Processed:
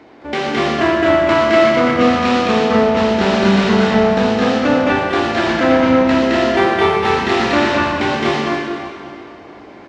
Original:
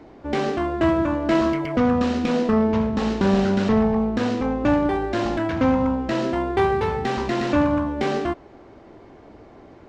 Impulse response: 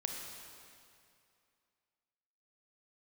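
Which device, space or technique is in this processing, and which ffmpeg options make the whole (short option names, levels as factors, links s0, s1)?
stadium PA: -filter_complex "[0:a]highpass=f=160:p=1,equalizer=f=2600:t=o:w=2.3:g=7.5,aecho=1:1:215.7|250.7:0.891|0.794[s0];[1:a]atrim=start_sample=2205[s1];[s0][s1]afir=irnorm=-1:irlink=0,volume=1.26"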